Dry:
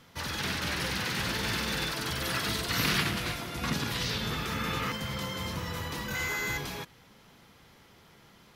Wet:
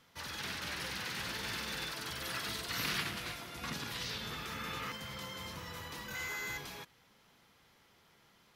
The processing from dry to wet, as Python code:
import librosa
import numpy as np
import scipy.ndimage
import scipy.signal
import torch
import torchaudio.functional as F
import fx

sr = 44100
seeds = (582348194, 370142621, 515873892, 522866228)

y = fx.low_shelf(x, sr, hz=450.0, db=-6.0)
y = F.gain(torch.from_numpy(y), -7.0).numpy()